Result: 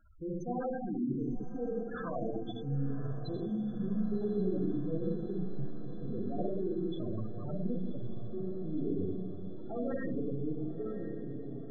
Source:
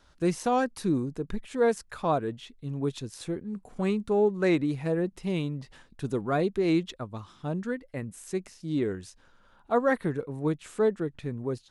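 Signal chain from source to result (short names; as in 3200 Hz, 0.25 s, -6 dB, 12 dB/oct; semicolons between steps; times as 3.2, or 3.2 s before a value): ending faded out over 2.76 s; in parallel at +1 dB: negative-ratio compressor -33 dBFS, ratio -1; on the sum: soft clip -27.5 dBFS, distortion -8 dB; Schroeder reverb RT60 2 s, combs from 29 ms, DRR -5 dB; spectral gate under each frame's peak -10 dB strong; on a send: diffused feedback echo 1.063 s, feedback 72%, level -12 dB; on the sum: gain -8.5 dB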